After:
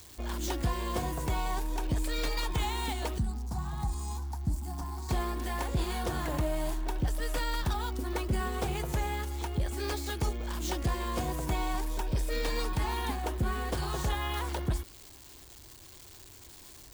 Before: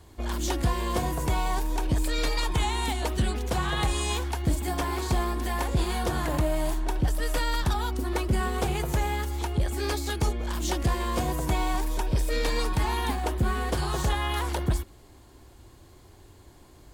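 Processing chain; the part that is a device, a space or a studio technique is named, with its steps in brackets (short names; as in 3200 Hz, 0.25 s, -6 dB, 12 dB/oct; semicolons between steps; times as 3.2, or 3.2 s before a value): 3.18–5.09 EQ curve 220 Hz 0 dB, 540 Hz -22 dB, 810 Hz -2 dB, 2900 Hz -26 dB, 4800 Hz -7 dB; budget class-D amplifier (switching dead time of 0.051 ms; switching spikes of -31 dBFS); gain -5 dB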